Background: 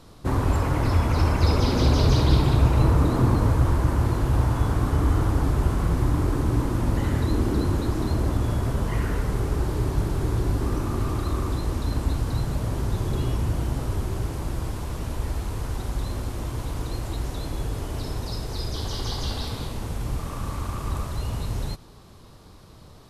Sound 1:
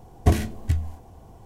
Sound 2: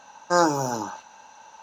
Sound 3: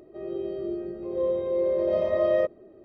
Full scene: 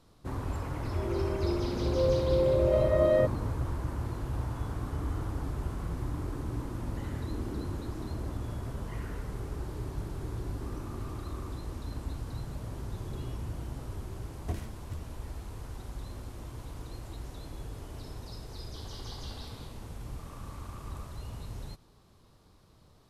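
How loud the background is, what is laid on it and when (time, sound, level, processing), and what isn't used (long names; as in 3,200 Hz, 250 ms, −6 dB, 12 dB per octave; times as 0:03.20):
background −12.5 dB
0:00.80: mix in 3 −1.5 dB
0:14.22: mix in 1 −17.5 dB
not used: 2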